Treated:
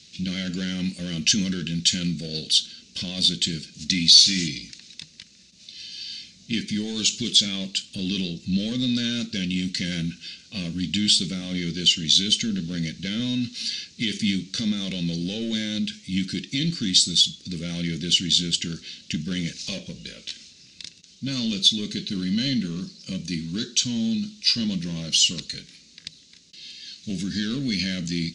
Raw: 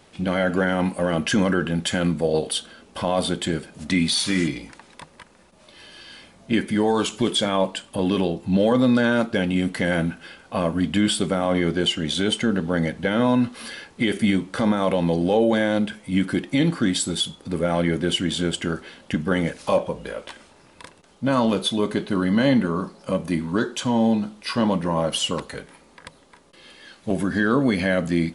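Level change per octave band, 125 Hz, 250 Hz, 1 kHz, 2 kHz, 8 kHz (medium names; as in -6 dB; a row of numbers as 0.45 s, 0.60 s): -3.0 dB, -5.0 dB, under -20 dB, -7.0 dB, +6.5 dB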